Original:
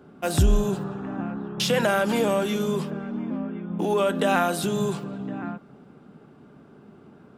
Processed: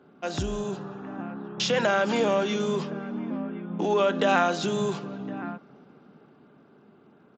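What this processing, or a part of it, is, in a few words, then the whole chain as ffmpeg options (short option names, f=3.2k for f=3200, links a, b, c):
Bluetooth headset: -af "highpass=f=220:p=1,dynaudnorm=f=370:g=9:m=5dB,aresample=16000,aresample=44100,volume=-4dB" -ar 16000 -c:a sbc -b:a 64k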